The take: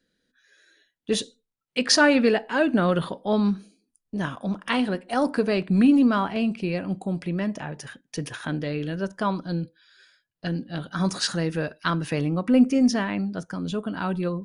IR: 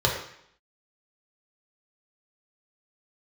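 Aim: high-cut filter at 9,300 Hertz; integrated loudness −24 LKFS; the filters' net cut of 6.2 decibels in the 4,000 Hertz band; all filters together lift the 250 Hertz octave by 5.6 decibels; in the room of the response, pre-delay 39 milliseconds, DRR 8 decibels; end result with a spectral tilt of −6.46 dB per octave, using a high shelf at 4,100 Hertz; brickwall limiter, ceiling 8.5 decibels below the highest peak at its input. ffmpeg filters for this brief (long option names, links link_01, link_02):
-filter_complex "[0:a]lowpass=9300,equalizer=frequency=250:width_type=o:gain=6.5,equalizer=frequency=4000:width_type=o:gain=-4,highshelf=frequency=4100:gain=-6,alimiter=limit=-11dB:level=0:latency=1,asplit=2[link_01][link_02];[1:a]atrim=start_sample=2205,adelay=39[link_03];[link_02][link_03]afir=irnorm=-1:irlink=0,volume=-22.5dB[link_04];[link_01][link_04]amix=inputs=2:normalize=0,volume=-2dB"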